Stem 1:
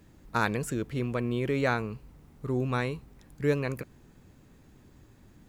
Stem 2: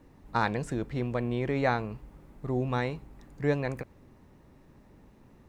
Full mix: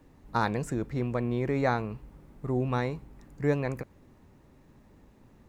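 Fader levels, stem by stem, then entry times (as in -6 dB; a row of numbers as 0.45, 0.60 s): -10.5, -1.5 dB; 0.00, 0.00 s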